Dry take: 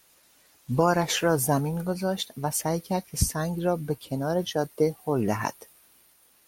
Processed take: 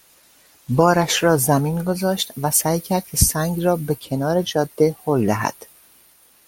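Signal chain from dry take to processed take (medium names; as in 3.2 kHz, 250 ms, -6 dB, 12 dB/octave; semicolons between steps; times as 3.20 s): 1.94–4.00 s: treble shelf 8 kHz +8 dB; trim +7 dB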